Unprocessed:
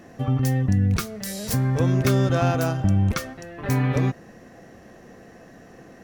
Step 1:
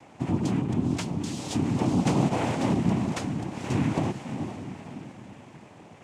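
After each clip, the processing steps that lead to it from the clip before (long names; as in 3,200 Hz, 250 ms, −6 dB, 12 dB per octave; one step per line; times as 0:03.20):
feedback delay with all-pass diffusion 474 ms, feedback 42%, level −8 dB
dynamic equaliser 1,300 Hz, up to −3 dB, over −40 dBFS, Q 0.71
cochlear-implant simulation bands 4
level −4 dB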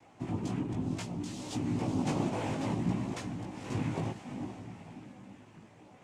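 multi-voice chorus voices 4, 0.6 Hz, delay 18 ms, depth 2.1 ms
level −4.5 dB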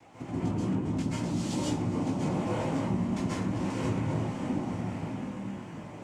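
downward compressor, threshold −40 dBFS, peak gain reduction 13.5 dB
dense smooth reverb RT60 0.76 s, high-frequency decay 0.45×, pre-delay 120 ms, DRR −7.5 dB
level +3.5 dB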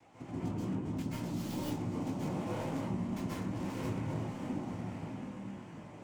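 stylus tracing distortion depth 0.13 ms
level −6.5 dB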